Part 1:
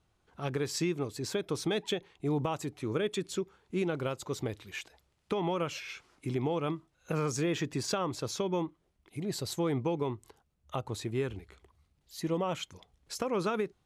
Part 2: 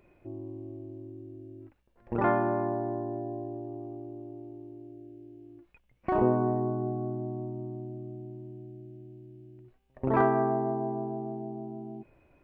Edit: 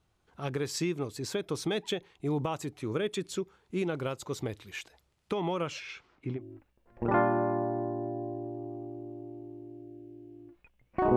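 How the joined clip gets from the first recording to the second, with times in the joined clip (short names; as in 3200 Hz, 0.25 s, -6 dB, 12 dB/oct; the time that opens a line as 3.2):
part 1
5.61–6.42 LPF 11000 Hz -> 1700 Hz
6.37 switch to part 2 from 1.47 s, crossfade 0.10 s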